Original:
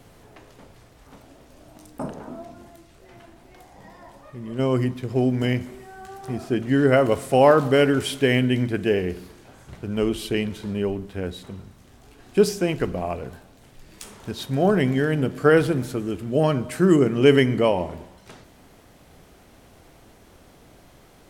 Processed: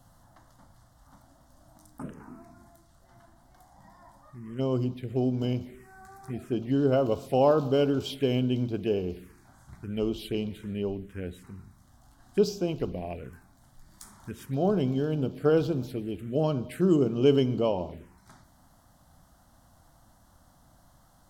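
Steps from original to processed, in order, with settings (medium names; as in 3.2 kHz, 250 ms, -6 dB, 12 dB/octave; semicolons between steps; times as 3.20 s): touch-sensitive phaser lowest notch 390 Hz, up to 1.9 kHz, full sweep at -20 dBFS; trim -5.5 dB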